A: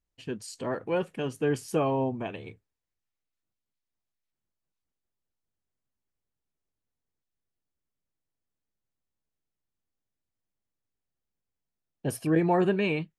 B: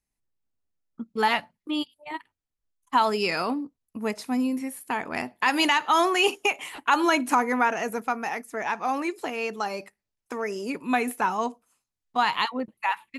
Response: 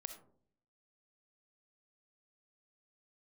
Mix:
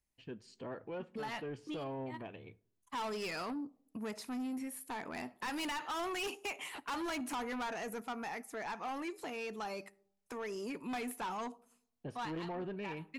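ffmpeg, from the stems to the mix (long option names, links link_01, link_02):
-filter_complex "[0:a]lowpass=4000,volume=-11dB,asplit=3[link_01][link_02][link_03];[link_02]volume=-12.5dB[link_04];[1:a]volume=-4.5dB,asplit=2[link_05][link_06];[link_06]volume=-16dB[link_07];[link_03]apad=whole_len=581591[link_08];[link_05][link_08]sidechaincompress=threshold=-47dB:ratio=8:attack=5.4:release=209[link_09];[2:a]atrim=start_sample=2205[link_10];[link_04][link_07]amix=inputs=2:normalize=0[link_11];[link_11][link_10]afir=irnorm=-1:irlink=0[link_12];[link_01][link_09][link_12]amix=inputs=3:normalize=0,asoftclip=type=tanh:threshold=-30dB,alimiter=level_in=11.5dB:limit=-24dB:level=0:latency=1:release=180,volume=-11.5dB"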